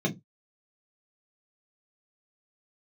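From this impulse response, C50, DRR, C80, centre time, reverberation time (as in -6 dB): 19.0 dB, -1.5 dB, 27.0 dB, 13 ms, 0.15 s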